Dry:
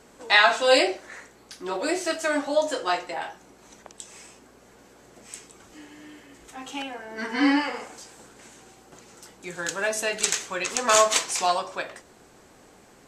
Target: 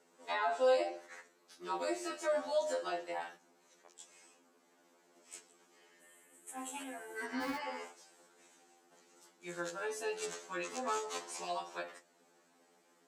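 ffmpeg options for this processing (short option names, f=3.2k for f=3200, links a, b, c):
-filter_complex "[0:a]asettb=1/sr,asplit=3[a][b][c];[a]atrim=end=6.014[d];[b]atrim=start=6.01:end=7.25,asetpts=PTS-STARTPTS,afade=t=in:d=0.004:c=qsin,afade=t=out:st=1.236:d=0.004:c=qsin,highshelf=f=6.9k:t=q:w=3:g=10.5[e];[c]atrim=start=7.246[f];[d][e]acrossfade=d=0.004:c1=hsin:c2=qsin[g];[g][f]acrossfade=d=0.004:c1=qsin:c2=hsin,agate=range=-7dB:threshold=-41dB:ratio=16:detection=peak,acrossover=split=180|1100[h][i][j];[h]acrusher=bits=5:mix=0:aa=0.000001[k];[i]alimiter=limit=-20dB:level=0:latency=1:release=98[l];[j]acompressor=threshold=-35dB:ratio=8[m];[k][l][m]amix=inputs=3:normalize=0,afftfilt=real='re*2*eq(mod(b,4),0)':imag='im*2*eq(mod(b,4),0)':win_size=2048:overlap=0.75,volume=-5.5dB"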